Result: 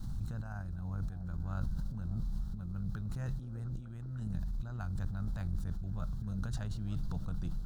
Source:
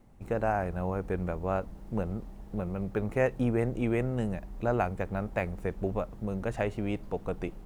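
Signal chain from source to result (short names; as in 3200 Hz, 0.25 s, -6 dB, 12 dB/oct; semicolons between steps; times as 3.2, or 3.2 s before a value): EQ curve 150 Hz 0 dB, 440 Hz -28 dB, 1500 Hz -9 dB, 2200 Hz -29 dB, 4000 Hz 0 dB, 8600 Hz -8 dB; negative-ratio compressor -41 dBFS, ratio -0.5; delay with a stepping band-pass 0.302 s, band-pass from 400 Hz, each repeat 0.7 oct, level -10 dB; backwards sustainer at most 22 dB/s; gain +3 dB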